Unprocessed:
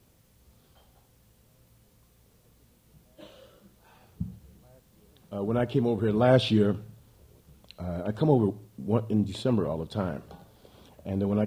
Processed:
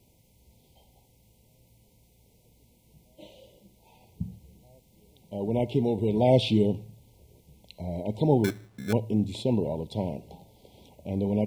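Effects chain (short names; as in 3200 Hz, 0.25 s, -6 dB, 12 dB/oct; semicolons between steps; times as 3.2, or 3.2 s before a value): FFT band-reject 1000–2000 Hz; 8.44–8.93 sample-rate reducer 1900 Hz, jitter 0%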